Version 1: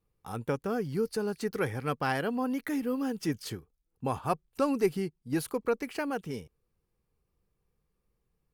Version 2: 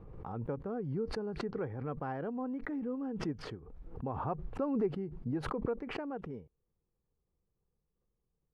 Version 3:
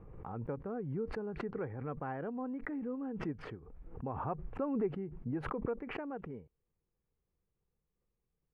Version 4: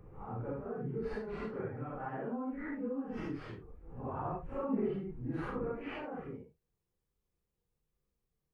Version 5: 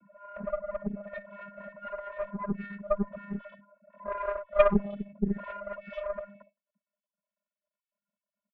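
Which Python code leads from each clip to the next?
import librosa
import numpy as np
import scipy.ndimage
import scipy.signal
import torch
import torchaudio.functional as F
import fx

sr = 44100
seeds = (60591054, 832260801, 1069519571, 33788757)

y1 = scipy.signal.sosfilt(scipy.signal.butter(2, 1000.0, 'lowpass', fs=sr, output='sos'), x)
y1 = fx.pre_swell(y1, sr, db_per_s=37.0)
y1 = y1 * librosa.db_to_amplitude(-6.5)
y2 = fx.high_shelf_res(y1, sr, hz=3200.0, db=-9.5, q=1.5)
y2 = y2 * librosa.db_to_amplitude(-2.0)
y3 = fx.phase_scramble(y2, sr, seeds[0], window_ms=200)
y4 = fx.sine_speech(y3, sr)
y4 = fx.vocoder(y4, sr, bands=16, carrier='square', carrier_hz=202.0)
y4 = fx.cheby_harmonics(y4, sr, harmonics=(3, 4), levels_db=(-21, -13), full_scale_db=-18.0)
y4 = y4 * librosa.db_to_amplitude(8.5)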